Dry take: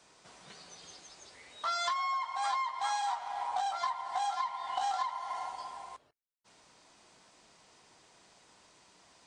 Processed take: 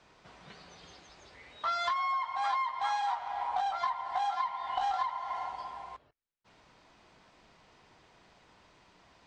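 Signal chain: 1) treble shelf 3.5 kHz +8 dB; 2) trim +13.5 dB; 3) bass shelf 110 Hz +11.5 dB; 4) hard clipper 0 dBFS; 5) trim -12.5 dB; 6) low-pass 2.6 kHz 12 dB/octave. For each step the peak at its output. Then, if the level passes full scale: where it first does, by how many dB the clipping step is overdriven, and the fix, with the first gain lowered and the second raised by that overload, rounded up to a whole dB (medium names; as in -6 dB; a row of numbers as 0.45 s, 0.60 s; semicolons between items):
-19.0 dBFS, -5.5 dBFS, -5.5 dBFS, -5.5 dBFS, -18.0 dBFS, -19.5 dBFS; nothing clips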